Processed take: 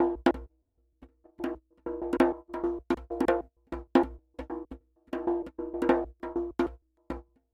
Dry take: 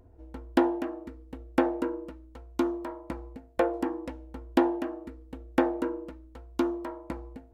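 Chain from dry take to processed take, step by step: slices played last to first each 155 ms, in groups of 5; phaser 0.63 Hz, delay 3.9 ms, feedback 21%; gate -37 dBFS, range -24 dB

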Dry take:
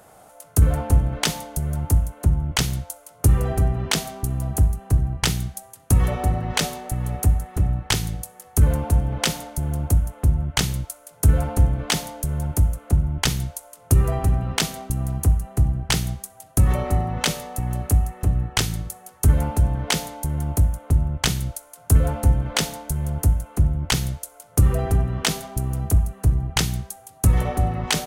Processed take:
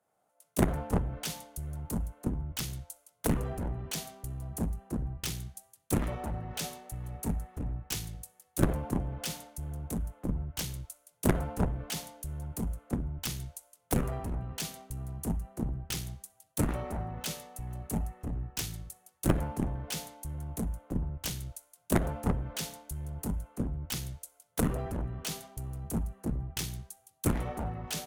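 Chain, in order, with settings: Chebyshev shaper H 3 -7 dB, 7 -33 dB, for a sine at -4 dBFS; wavefolder -14.5 dBFS; three bands expanded up and down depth 70%; trim -3.5 dB

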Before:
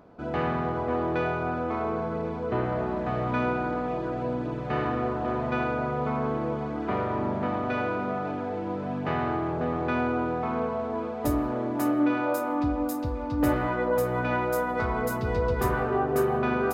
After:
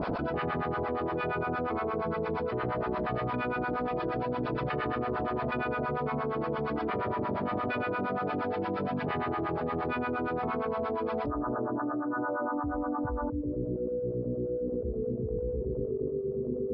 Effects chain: steep low-pass 5.2 kHz 96 dB/octave, from 11.25 s 1.6 kHz, from 13.28 s 540 Hz; dynamic bell 430 Hz, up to +6 dB, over -47 dBFS, Q 6.3; harmonic tremolo 8.6 Hz, depth 100%, crossover 800 Hz; level flattener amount 100%; trim -9 dB

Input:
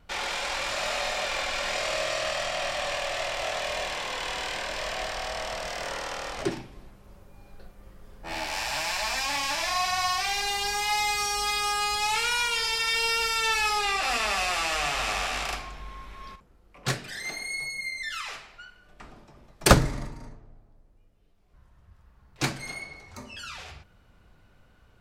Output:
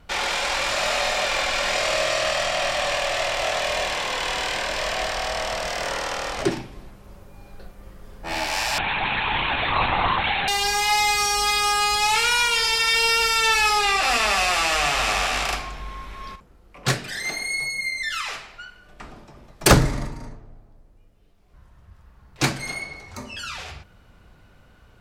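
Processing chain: Chebyshev shaper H 5 -13 dB, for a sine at -2.5 dBFS; 8.78–10.48 s: LPC vocoder at 8 kHz whisper

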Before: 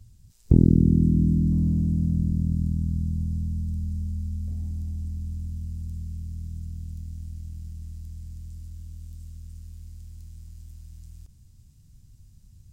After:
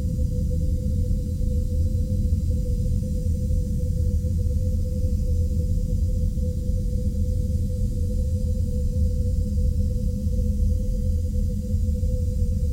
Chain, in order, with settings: gated-style reverb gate 230 ms rising, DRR 1 dB; whistle 500 Hz -48 dBFS; Paulstretch 27×, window 0.10 s, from 3.80 s; trim +8.5 dB

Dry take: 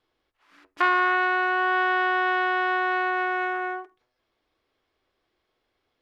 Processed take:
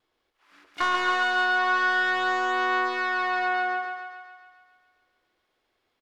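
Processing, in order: bass shelf 270 Hz -4 dB; harmony voices -7 st -17 dB, +12 st -16 dB; vibrato 0.49 Hz 6.8 cents; saturation -16.5 dBFS, distortion -15 dB; thinning echo 138 ms, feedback 62%, high-pass 340 Hz, level -5 dB

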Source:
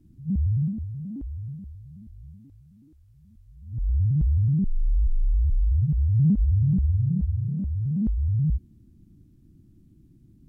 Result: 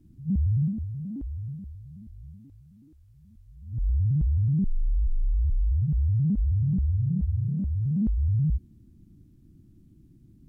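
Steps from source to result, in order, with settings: peak limiter -19.5 dBFS, peak gain reduction 5.5 dB

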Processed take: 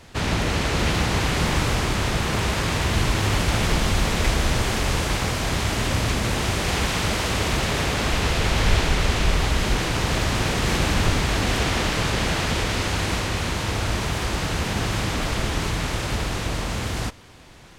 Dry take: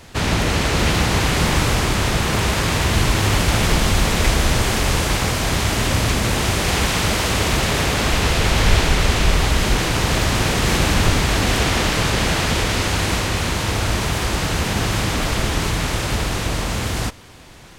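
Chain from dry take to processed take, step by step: treble shelf 9.8 kHz -6 dB; trim -4 dB

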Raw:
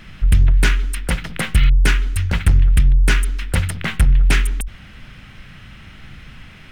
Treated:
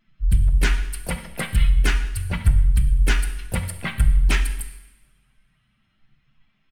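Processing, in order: expander on every frequency bin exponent 2; in parallel at -2.5 dB: peak limiter -14 dBFS, peak gain reduction 7.5 dB; on the sum: two-slope reverb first 0.97 s, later 2.5 s, from -24 dB, DRR 7 dB; harmony voices -12 st -15 dB, +4 st -12 dB; trim -5.5 dB

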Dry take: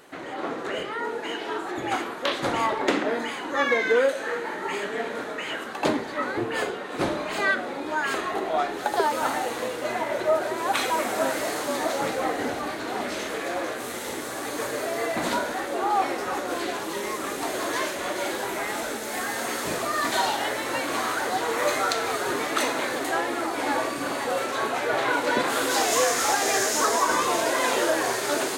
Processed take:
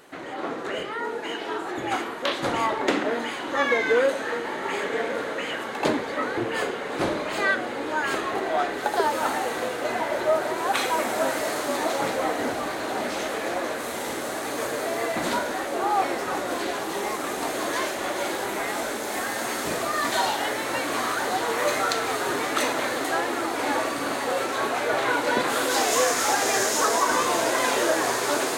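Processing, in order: echo that smears into a reverb 1178 ms, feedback 76%, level -11 dB

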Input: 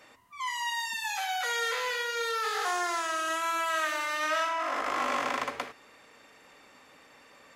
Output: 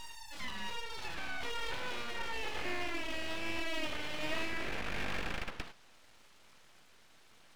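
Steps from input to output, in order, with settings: reverse echo 738 ms -8.5 dB; low-pass that closes with the level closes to 2 kHz, closed at -29 dBFS; full-wave rectifier; trim -4 dB

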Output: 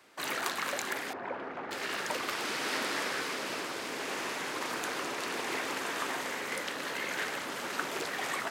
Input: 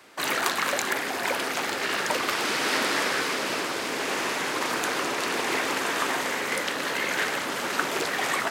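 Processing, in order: 1.13–1.71 s: low-pass 1.3 kHz 12 dB/octave; trim -8 dB

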